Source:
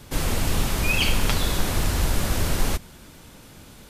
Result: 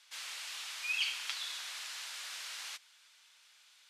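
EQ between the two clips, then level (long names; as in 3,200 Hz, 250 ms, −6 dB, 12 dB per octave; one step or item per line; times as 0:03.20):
high-pass filter 1,100 Hz 12 dB per octave
low-pass filter 3,800 Hz 12 dB per octave
first difference
0.0 dB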